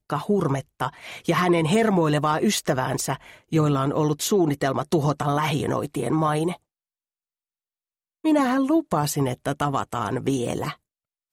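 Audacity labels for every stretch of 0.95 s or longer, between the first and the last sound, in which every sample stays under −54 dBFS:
6.570000	8.240000	silence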